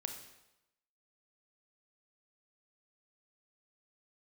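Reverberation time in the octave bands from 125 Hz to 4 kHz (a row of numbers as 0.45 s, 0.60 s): 0.85 s, 0.85 s, 0.90 s, 0.95 s, 0.85 s, 0.80 s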